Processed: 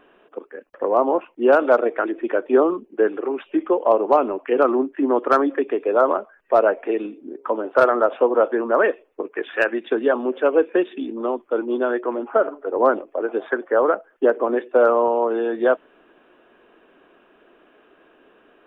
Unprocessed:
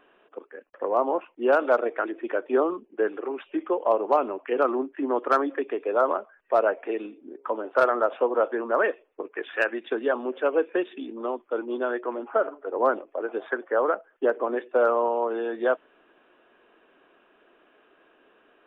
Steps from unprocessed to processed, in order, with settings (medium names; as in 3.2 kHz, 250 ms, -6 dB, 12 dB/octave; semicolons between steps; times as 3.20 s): bass shelf 410 Hz +6.5 dB; trim +3.5 dB